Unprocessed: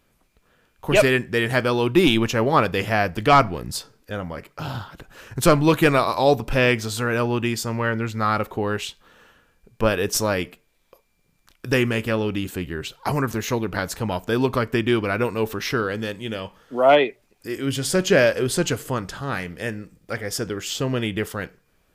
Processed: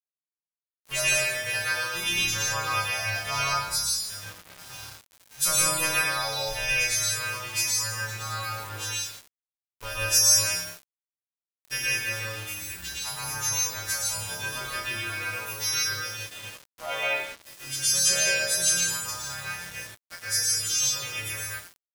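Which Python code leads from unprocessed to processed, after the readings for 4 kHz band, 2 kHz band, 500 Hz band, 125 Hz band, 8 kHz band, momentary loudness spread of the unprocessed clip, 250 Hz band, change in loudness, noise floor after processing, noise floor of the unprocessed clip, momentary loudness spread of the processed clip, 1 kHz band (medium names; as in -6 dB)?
+2.5 dB, -2.0 dB, -17.0 dB, -13.5 dB, +9.0 dB, 15 LU, -24.0 dB, -3.5 dB, under -85 dBFS, -65 dBFS, 16 LU, -10.5 dB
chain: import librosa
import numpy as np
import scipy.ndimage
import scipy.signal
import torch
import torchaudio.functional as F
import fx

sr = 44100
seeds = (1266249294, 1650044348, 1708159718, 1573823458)

y = fx.freq_snap(x, sr, grid_st=2)
y = fx.tone_stack(y, sr, knobs='10-0-10')
y = fx.room_flutter(y, sr, wall_m=5.0, rt60_s=0.74)
y = fx.rev_plate(y, sr, seeds[0], rt60_s=0.77, hf_ratio=0.9, predelay_ms=105, drr_db=-5.0)
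y = np.where(np.abs(y) >= 10.0 ** (-29.5 / 20.0), y, 0.0)
y = y * librosa.db_to_amplitude(-8.0)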